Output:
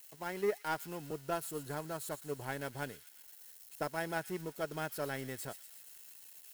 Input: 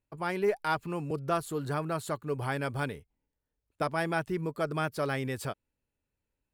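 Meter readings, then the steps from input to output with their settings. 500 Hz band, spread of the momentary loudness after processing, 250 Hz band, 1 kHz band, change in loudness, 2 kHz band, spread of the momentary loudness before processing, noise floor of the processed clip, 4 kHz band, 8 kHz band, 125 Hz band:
−6.5 dB, 15 LU, −8.5 dB, −7.5 dB, −7.0 dB, −6.5 dB, 6 LU, −58 dBFS, −5.0 dB, +1.0 dB, −11.0 dB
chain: spike at every zero crossing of −31 dBFS
notch comb filter 1,200 Hz
power curve on the samples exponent 1.4
on a send: delay with a high-pass on its return 117 ms, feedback 63%, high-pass 3,300 Hz, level −9.5 dB
on the sum: level −3 dB

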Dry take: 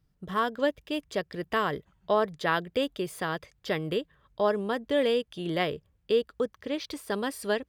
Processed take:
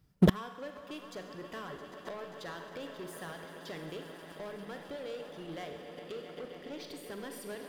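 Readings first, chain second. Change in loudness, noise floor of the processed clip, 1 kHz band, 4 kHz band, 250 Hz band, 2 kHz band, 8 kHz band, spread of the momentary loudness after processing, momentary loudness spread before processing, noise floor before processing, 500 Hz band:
−9.5 dB, −51 dBFS, −13.5 dB, −11.0 dB, −3.5 dB, −12.5 dB, −6.0 dB, 4 LU, 7 LU, −71 dBFS, −12.5 dB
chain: high-pass filter 46 Hz 6 dB per octave
reverb reduction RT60 1.5 s
parametric band 13,000 Hz +3 dB 0.3 octaves
downward compressor 5 to 1, threshold −28 dBFS, peak gain reduction 8.5 dB
echo that builds up and dies away 133 ms, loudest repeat 5, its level −16 dB
leveller curve on the samples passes 3
four-comb reverb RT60 1.2 s, combs from 32 ms, DRR 5.5 dB
gate with flip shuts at −21 dBFS, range −29 dB
level +10 dB

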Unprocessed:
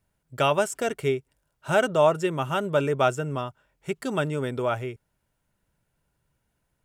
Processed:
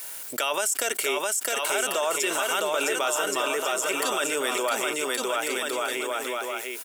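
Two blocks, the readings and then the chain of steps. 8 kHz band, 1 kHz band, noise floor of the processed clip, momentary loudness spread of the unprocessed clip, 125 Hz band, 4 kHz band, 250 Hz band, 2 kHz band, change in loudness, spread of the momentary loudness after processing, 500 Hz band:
+15.5 dB, +0.5 dB, −38 dBFS, 13 LU, below −20 dB, +9.0 dB, −4.5 dB, +5.5 dB, 0.0 dB, 4 LU, −2.5 dB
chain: high-pass filter 270 Hz 24 dB per octave
spectral tilt +4.5 dB per octave
brickwall limiter −17 dBFS, peak gain reduction 11.5 dB
on a send: bouncing-ball delay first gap 660 ms, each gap 0.7×, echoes 5
on the sum: envelope flattener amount 70%

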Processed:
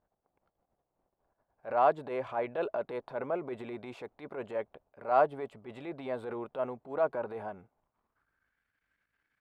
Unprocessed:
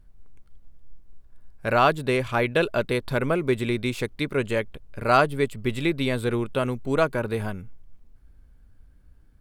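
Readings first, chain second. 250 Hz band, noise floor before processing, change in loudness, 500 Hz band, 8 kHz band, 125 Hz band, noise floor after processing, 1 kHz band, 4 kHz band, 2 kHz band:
−15.5 dB, −54 dBFS, −9.0 dB, −7.5 dB, below −25 dB, −22.0 dB, −85 dBFS, −6.0 dB, below −20 dB, −16.0 dB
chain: transient designer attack −10 dB, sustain +5 dB
band-pass filter sweep 730 Hz → 2,000 Hz, 0:07.68–0:08.63

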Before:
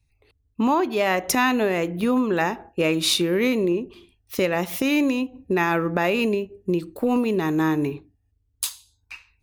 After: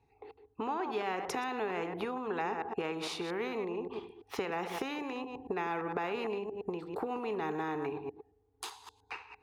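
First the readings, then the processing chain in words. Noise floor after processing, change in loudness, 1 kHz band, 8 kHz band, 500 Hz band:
−71 dBFS, −14.0 dB, −9.5 dB, −19.5 dB, −12.0 dB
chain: delay that plays each chunk backwards 114 ms, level −13 dB
downward compressor 6 to 1, threshold −28 dBFS, peak gain reduction 12 dB
pair of resonant band-passes 590 Hz, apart 0.87 octaves
every bin compressed towards the loudest bin 2 to 1
level +5 dB

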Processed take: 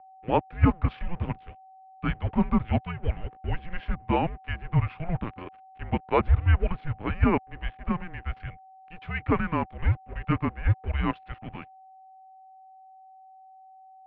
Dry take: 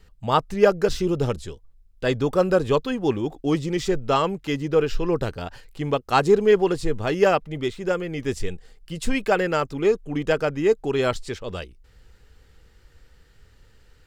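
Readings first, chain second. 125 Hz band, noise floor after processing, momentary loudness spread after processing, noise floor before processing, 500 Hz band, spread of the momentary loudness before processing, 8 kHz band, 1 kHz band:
+3.0 dB, −52 dBFS, 15 LU, −56 dBFS, −13.5 dB, 13 LU, below −40 dB, −5.0 dB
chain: dead-zone distortion −38 dBFS
steady tone 1,100 Hz −46 dBFS
single-sideband voice off tune −340 Hz 300–3,000 Hz
level −2.5 dB

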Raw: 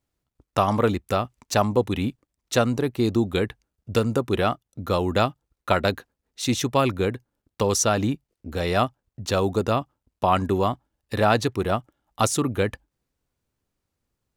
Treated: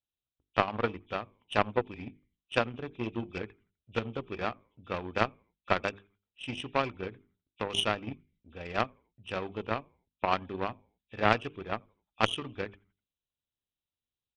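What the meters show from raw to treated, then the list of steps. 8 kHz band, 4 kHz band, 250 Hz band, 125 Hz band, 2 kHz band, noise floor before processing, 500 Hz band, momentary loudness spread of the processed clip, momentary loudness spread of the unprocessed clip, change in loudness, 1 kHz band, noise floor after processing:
−21.0 dB, −5.5 dB, −13.0 dB, −14.0 dB, −4.0 dB, −83 dBFS, −10.5 dB, 14 LU, 8 LU, −9.0 dB, −8.0 dB, below −85 dBFS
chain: hearing-aid frequency compression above 2,300 Hz 4 to 1
mains-hum notches 50/100/150/200/250/300/350/400/450 Hz
on a send: echo with shifted repeats 84 ms, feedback 41%, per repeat −100 Hz, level −22 dB
on the sum: harmonic generator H 2 −17 dB, 3 −12 dB, 4 −26 dB, 7 −34 dB, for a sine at −4.5 dBFS

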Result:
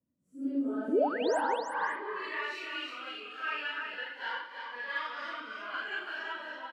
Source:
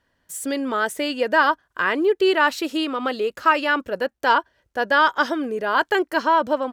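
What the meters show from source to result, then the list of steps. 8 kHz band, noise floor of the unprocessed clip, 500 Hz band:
−18.0 dB, −71 dBFS, −13.0 dB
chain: random phases in long frames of 200 ms
high-pass filter 89 Hz
low-shelf EQ 200 Hz +8.5 dB
in parallel at −9 dB: soft clipping −19.5 dBFS, distortion −10 dB
on the sum: sound drawn into the spectrogram rise, 0:00.88–0:01.41, 220–11,000 Hz −13 dBFS
band-pass filter sweep 220 Hz → 2,200 Hz, 0:00.17–0:02.46
multi-tap delay 183/331/549 ms −13.5/−5/−14.5 dB
phaser whose notches keep moving one way rising 0.38 Hz
level −7.5 dB

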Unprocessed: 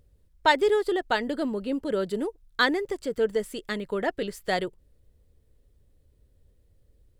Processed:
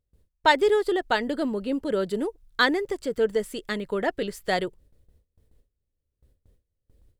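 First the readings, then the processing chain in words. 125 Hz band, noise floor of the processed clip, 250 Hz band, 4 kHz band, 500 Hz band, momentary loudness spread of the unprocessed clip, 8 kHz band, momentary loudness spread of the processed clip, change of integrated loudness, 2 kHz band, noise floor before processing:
+1.5 dB, −81 dBFS, +1.5 dB, +1.5 dB, +1.5 dB, 10 LU, +1.5 dB, 10 LU, +1.5 dB, +1.5 dB, −64 dBFS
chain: noise gate with hold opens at −51 dBFS
level +1.5 dB

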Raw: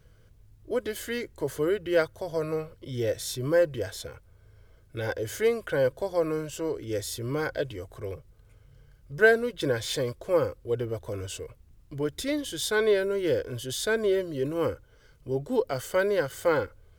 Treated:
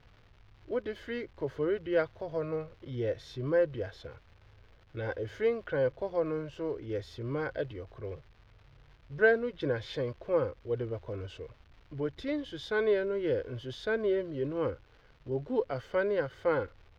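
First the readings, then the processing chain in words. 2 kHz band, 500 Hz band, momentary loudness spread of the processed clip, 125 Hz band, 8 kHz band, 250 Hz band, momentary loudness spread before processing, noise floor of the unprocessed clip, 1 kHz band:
−5.5 dB, −4.0 dB, 13 LU, −3.5 dB, below −20 dB, −4.0 dB, 13 LU, −58 dBFS, −4.5 dB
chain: surface crackle 360 per second −40 dBFS
high-frequency loss of the air 270 metres
level −3.5 dB

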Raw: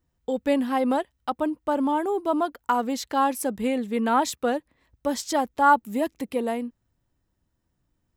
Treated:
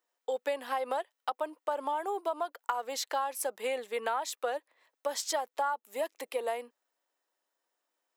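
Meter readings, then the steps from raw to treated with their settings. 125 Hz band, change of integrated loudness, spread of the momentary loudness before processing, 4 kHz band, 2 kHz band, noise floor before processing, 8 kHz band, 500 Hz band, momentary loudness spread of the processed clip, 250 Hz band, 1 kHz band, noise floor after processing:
can't be measured, −9.0 dB, 8 LU, −3.5 dB, −8.0 dB, −76 dBFS, −3.0 dB, −7.0 dB, 4 LU, −23.5 dB, −9.0 dB, below −85 dBFS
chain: high-pass filter 490 Hz 24 dB per octave
downward compressor 12 to 1, threshold −28 dBFS, peak gain reduction 16 dB

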